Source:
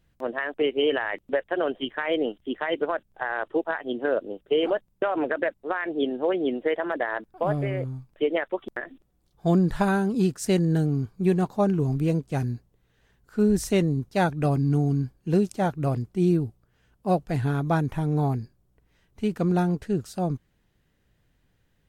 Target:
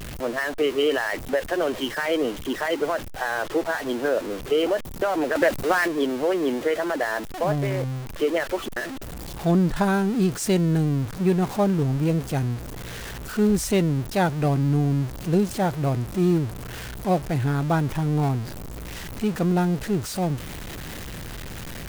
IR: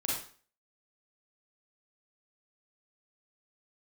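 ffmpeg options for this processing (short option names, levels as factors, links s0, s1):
-filter_complex "[0:a]aeval=exprs='val(0)+0.5*0.0355*sgn(val(0))':c=same,asettb=1/sr,asplit=3[s0][s1][s2];[s0]atrim=end=5.354[s3];[s1]atrim=start=5.35:end=5.88,asetpts=PTS-STARTPTS,afade=t=in:d=0.004:c=qsin,afade=t=out:st=0.526:d=0.004:c=qsin,acontrast=28[s4];[s2]atrim=start=5.876[s5];[s3][s4]acrossfade=d=0.004:c1=hsin:c2=qsin[s6];[s6][s5]acrossfade=d=0.004:c1=qsin:c2=hsin"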